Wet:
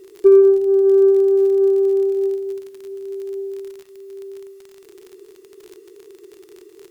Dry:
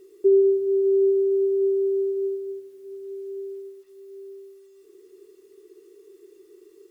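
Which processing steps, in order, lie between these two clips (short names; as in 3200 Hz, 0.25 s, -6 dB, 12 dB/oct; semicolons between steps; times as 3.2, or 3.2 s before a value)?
added harmonics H 3 -28 dB, 6 -41 dB, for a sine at -10.5 dBFS; crackle 49/s -38 dBFS; gain +7.5 dB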